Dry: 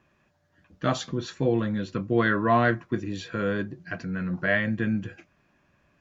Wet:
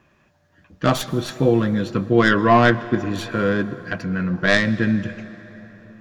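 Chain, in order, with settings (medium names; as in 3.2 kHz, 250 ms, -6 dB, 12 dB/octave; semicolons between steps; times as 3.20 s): tracing distortion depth 0.11 ms; on a send: reverberation RT60 4.4 s, pre-delay 98 ms, DRR 15.5 dB; on the sum: trim +7 dB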